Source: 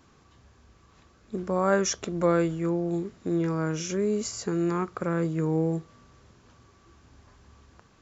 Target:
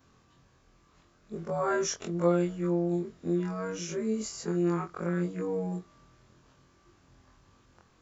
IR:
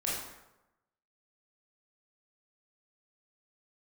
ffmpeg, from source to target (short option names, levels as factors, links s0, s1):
-af "afftfilt=real='re':imag='-im':win_size=2048:overlap=0.75"